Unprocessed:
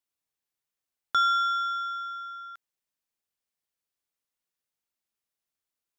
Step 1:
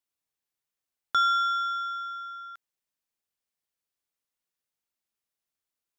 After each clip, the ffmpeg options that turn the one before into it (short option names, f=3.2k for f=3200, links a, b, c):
-af anull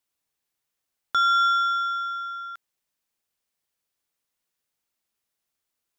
-af "alimiter=limit=-20.5dB:level=0:latency=1,volume=6dB"